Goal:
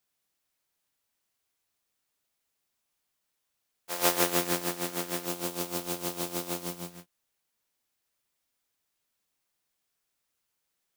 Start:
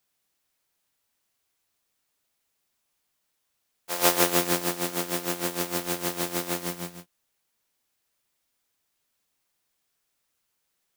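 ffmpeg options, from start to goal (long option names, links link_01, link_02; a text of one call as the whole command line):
ffmpeg -i in.wav -filter_complex "[0:a]asettb=1/sr,asplit=3[link_01][link_02][link_03];[link_01]atrim=end=5.264[link_04];[link_02]atrim=start=5.26:end=6.92,asetpts=PTS-STARTPTS,afade=type=in:duration=0.004:curve=qsin,afade=type=out:start_time=1.656:duration=0.004:curve=qsin,equalizer=frequency=1800:width=2.3:gain=-7[link_05];[link_03]atrim=start=6.916[link_06];[link_04][link_05]acrossfade=duration=0.004:curve1=hsin:curve2=qsin[link_07];[link_07][link_06]acrossfade=duration=0.004:curve1=qsin:curve2=hsin,volume=-4dB" out.wav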